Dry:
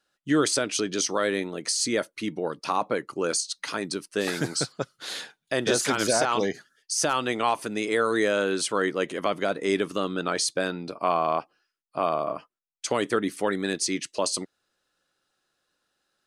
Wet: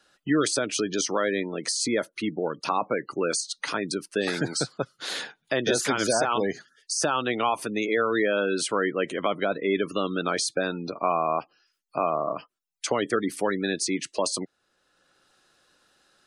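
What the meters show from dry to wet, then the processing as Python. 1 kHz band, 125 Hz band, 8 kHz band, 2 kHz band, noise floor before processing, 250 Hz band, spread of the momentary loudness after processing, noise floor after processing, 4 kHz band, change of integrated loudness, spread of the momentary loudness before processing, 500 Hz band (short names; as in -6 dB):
0.0 dB, 0.0 dB, -1.5 dB, +0.5 dB, -81 dBFS, +0.5 dB, 7 LU, -75 dBFS, -1.0 dB, 0.0 dB, 8 LU, 0.0 dB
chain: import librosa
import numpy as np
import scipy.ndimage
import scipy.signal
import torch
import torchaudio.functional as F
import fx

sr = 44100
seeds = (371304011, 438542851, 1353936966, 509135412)

y = fx.spec_gate(x, sr, threshold_db=-25, keep='strong')
y = fx.band_squash(y, sr, depth_pct=40)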